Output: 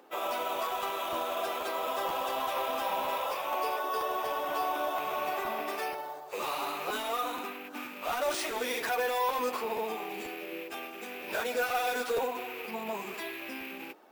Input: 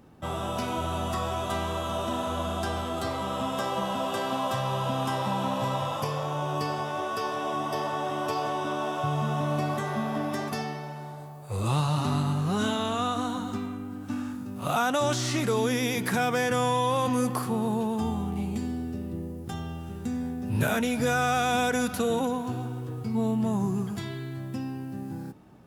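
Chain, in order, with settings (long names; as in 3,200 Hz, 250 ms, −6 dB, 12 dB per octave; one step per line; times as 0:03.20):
loose part that buzzes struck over −36 dBFS, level −31 dBFS
high-pass filter 390 Hz 24 dB per octave
high-shelf EQ 9,500 Hz −9 dB
in parallel at −0.5 dB: downward compressor 10 to 1, threshold −37 dBFS, peak gain reduction 15.5 dB
on the sum: hard clipping −23 dBFS, distortion −15 dB
time stretch by phase vocoder 0.55×
bad sample-rate conversion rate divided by 3×, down none, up hold
regular buffer underruns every 0.48 s repeat, from 0:00.64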